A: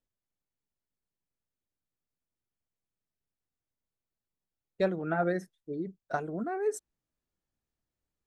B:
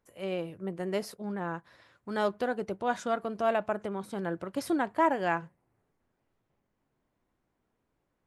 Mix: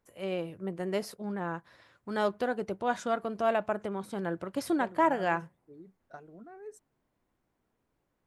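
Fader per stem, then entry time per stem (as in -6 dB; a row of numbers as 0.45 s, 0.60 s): -15.5 dB, 0.0 dB; 0.00 s, 0.00 s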